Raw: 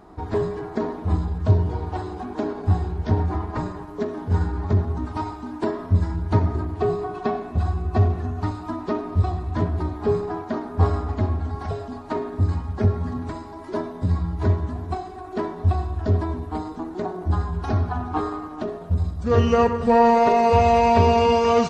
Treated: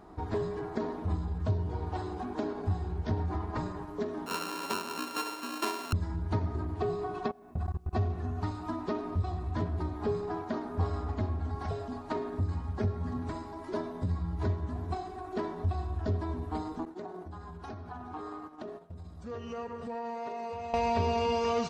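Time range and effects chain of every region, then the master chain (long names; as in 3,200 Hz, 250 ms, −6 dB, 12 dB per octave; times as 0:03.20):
0:04.26–0:05.93: samples sorted by size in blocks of 32 samples + high-pass filter 250 Hz 24 dB per octave + parametric band 990 Hz +8.5 dB 0.21 octaves
0:07.28–0:07.93: parametric band 4,400 Hz −8.5 dB 1.6 octaves + output level in coarse steps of 24 dB + bit-depth reduction 12 bits, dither none
0:16.85–0:20.74: downward expander −29 dBFS + downward compressor 5 to 1, threshold −32 dBFS + low-shelf EQ 100 Hz −11.5 dB
whole clip: dynamic equaliser 4,400 Hz, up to +4 dB, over −44 dBFS, Q 0.88; downward compressor 2 to 1, threshold −27 dBFS; level −4.5 dB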